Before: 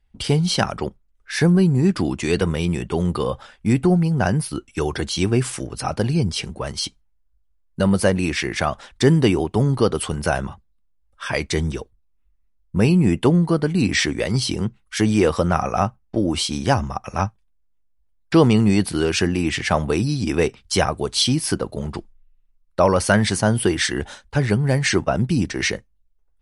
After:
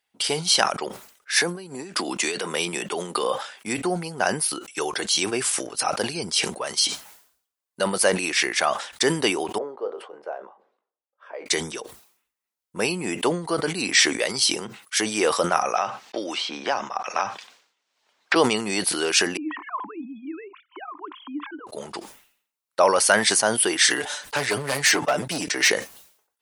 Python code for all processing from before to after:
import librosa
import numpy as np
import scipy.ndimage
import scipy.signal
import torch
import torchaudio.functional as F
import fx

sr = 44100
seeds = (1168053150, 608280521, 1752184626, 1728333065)

y = fx.chain(x, sr, fx.highpass(hz=150.0, slope=24),
    fx.over_compress(threshold_db=-23.0, ratio=-1.0), at=(1.36, 3.66))
y = fx.chain(y, sr, fx.ladder_bandpass(hz=560.0, resonance_pct=40),
    fx.doubler(ms=20.0, db=-11.0), at=(9.58, 11.46))
y = fx.chain(y, sr, fx.highpass(hz=420.0, slope=6),
    fx.air_absorb(metres=160.0),
    fx.band_squash(depth_pct=100), at=(15.75, 18.36))
y = fx.chain(y, sr, fx.sine_speech(),
    fx.double_bandpass(hz=550.0, octaves=1.8), at=(19.37, 21.67))
y = fx.chain(y, sr, fx.comb(ms=6.8, depth=0.71),
    fx.clip_hard(threshold_db=-13.0),
    fx.band_squash(depth_pct=40), at=(23.9, 25.7))
y = scipy.signal.sosfilt(scipy.signal.butter(2, 500.0, 'highpass', fs=sr, output='sos'), y)
y = fx.high_shelf(y, sr, hz=4200.0, db=8.0)
y = fx.sustainer(y, sr, db_per_s=100.0)